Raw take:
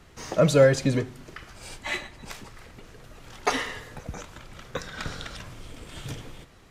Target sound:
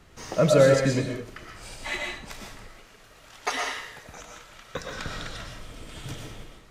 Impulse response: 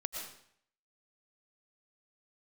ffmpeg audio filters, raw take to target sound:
-filter_complex "[0:a]asettb=1/sr,asplit=3[s0][s1][s2];[s0]atrim=end=2.684[s3];[s1]atrim=start=2.68:end=4.75,asetpts=PTS-STARTPTS,afade=t=in:d=0.004:c=qsin,afade=t=out:st=2.066:d=0.004:c=qsin,lowshelf=f=470:g=-12[s4];[s2]atrim=start=4.746[s5];[s3][s4]acrossfade=d=0.004:c1=hsin:c2=qsin[s6];[s6][s5]acrossfade=d=0.004:c1=qsin:c2=hsin[s7];[1:a]atrim=start_sample=2205,afade=t=out:st=0.28:d=0.01,atrim=end_sample=12789[s8];[s7][s8]afir=irnorm=-1:irlink=0"

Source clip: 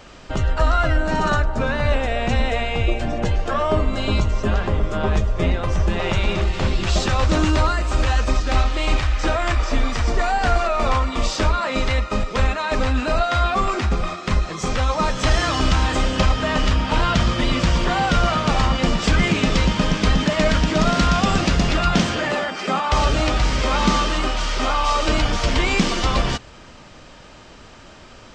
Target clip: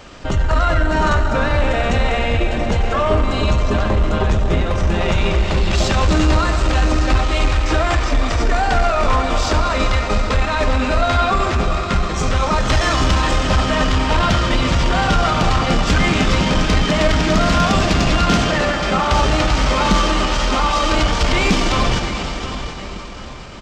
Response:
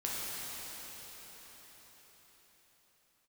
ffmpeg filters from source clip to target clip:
-filter_complex "[0:a]aecho=1:1:870|1740|2610:0.2|0.0638|0.0204,asplit=2[s0][s1];[1:a]atrim=start_sample=2205[s2];[s1][s2]afir=irnorm=-1:irlink=0,volume=0.473[s3];[s0][s3]amix=inputs=2:normalize=0,asoftclip=type=tanh:threshold=0.398,atempo=1.2,volume=1.12"

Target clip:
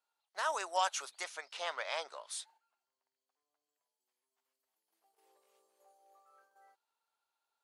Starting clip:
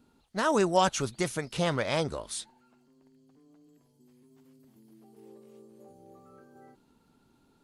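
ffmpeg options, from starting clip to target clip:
-filter_complex "[0:a]asettb=1/sr,asplit=3[s0][s1][s2];[s0]atrim=end=1.244[s3];[s1]atrim=start=1.24:end=2.3,asetpts=PTS-STARTPTS,afade=t=in:d=0.004:c=qsin,afade=t=out:st=1.056:d=0.004:c=qsin,lowpass=6400[s4];[s2]atrim=start=2.296[s5];[s3][s4]acrossfade=d=0.004:c1=hsin:c2=qsin[s6];[s6][s5]acrossfade=d=0.004:c1=qsin:c2=hsin,agate=range=0.355:threshold=0.00178:ratio=16:detection=peak,highpass=f=680:w=0.5412,highpass=f=680:w=1.3066,volume=0.531"

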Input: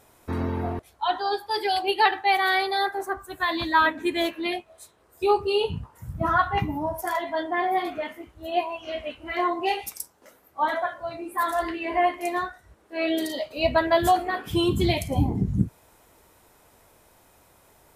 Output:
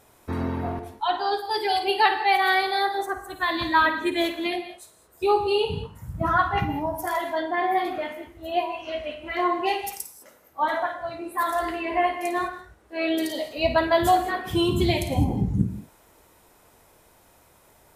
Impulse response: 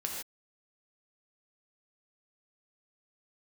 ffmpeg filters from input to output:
-filter_complex "[0:a]asplit=2[s0][s1];[1:a]atrim=start_sample=2205,adelay=53[s2];[s1][s2]afir=irnorm=-1:irlink=0,volume=0.316[s3];[s0][s3]amix=inputs=2:normalize=0"

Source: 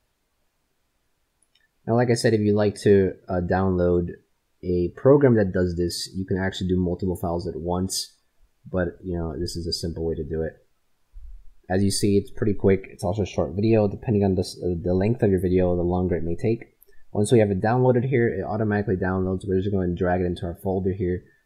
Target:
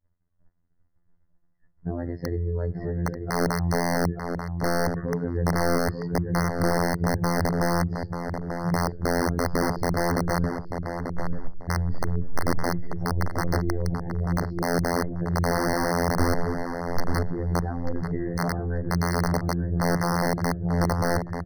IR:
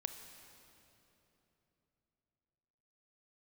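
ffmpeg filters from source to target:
-filter_complex "[0:a]lowpass=f=3000:w=0.5412,lowpass=f=3000:w=1.3066,aemphasis=mode=reproduction:type=bsi,agate=range=0.0224:threshold=0.00447:ratio=3:detection=peak,equalizer=f=140:t=o:w=0.88:g=9,acompressor=threshold=0.112:ratio=8,alimiter=limit=0.112:level=0:latency=1:release=61,afftfilt=real='hypot(re,im)*cos(PI*b)':imag='0':win_size=2048:overlap=0.75,aeval=exprs='(mod(10.6*val(0)+1,2)-1)/10.6':c=same,asplit=2[s0][s1];[s1]adelay=888,lowpass=f=1900:p=1,volume=0.531,asplit=2[s2][s3];[s3]adelay=888,lowpass=f=1900:p=1,volume=0.26,asplit=2[s4][s5];[s5]adelay=888,lowpass=f=1900:p=1,volume=0.26[s6];[s0][s2][s4][s6]amix=inputs=4:normalize=0,afftfilt=real='re*eq(mod(floor(b*sr/1024/2100),2),0)':imag='im*eq(mod(floor(b*sr/1024/2100),2),0)':win_size=1024:overlap=0.75,volume=1.78"

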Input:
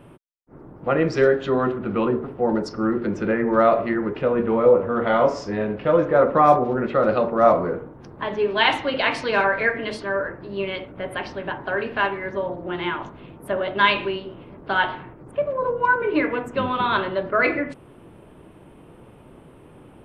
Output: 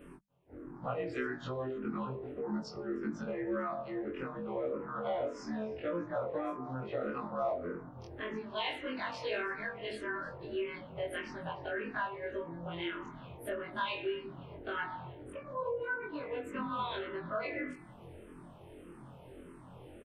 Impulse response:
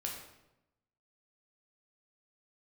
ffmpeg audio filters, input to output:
-filter_complex "[0:a]afftfilt=real='re':imag='-im':win_size=2048:overlap=0.75,bandreject=f=50:t=h:w=6,bandreject=f=100:t=h:w=6,bandreject=f=150:t=h:w=6,bandreject=f=200:t=h:w=6,acompressor=threshold=0.0126:ratio=2.5,asplit=2[s0][s1];[s1]aecho=0:1:310:0.0841[s2];[s0][s2]amix=inputs=2:normalize=0,asplit=2[s3][s4];[s4]afreqshift=-1.7[s5];[s3][s5]amix=inputs=2:normalize=1,volume=1.26"

